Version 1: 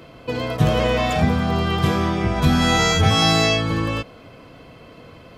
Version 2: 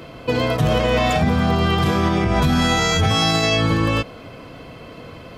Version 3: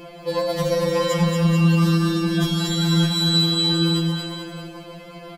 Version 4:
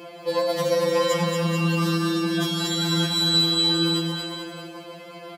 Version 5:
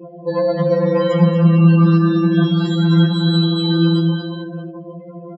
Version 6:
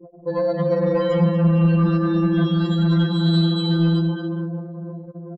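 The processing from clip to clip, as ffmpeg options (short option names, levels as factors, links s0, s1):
-af "alimiter=limit=0.188:level=0:latency=1:release=81,volume=1.88"
-filter_complex "[0:a]highshelf=f=6200:g=4,asplit=2[s0][s1];[s1]aecho=0:1:230|437|623.3|791|941.9:0.631|0.398|0.251|0.158|0.1[s2];[s0][s2]amix=inputs=2:normalize=0,afftfilt=real='re*2.83*eq(mod(b,8),0)':imag='im*2.83*eq(mod(b,8),0)':win_size=2048:overlap=0.75"
-af "highpass=240"
-filter_complex "[0:a]aemphasis=mode=reproduction:type=riaa,afftdn=nr=33:nf=-33,asplit=2[s0][s1];[s1]aecho=0:1:11|76:0.299|0.141[s2];[s0][s2]amix=inputs=2:normalize=0,volume=1.5"
-filter_complex "[0:a]asplit=2[s0][s1];[s1]adelay=452,lowpass=f=3700:p=1,volume=0.299,asplit=2[s2][s3];[s3]adelay=452,lowpass=f=3700:p=1,volume=0.48,asplit=2[s4][s5];[s5]adelay=452,lowpass=f=3700:p=1,volume=0.48,asplit=2[s6][s7];[s7]adelay=452,lowpass=f=3700:p=1,volume=0.48,asplit=2[s8][s9];[s9]adelay=452,lowpass=f=3700:p=1,volume=0.48[s10];[s0][s2][s4][s6][s8][s10]amix=inputs=6:normalize=0,acontrast=31,anlmdn=1000,volume=0.376"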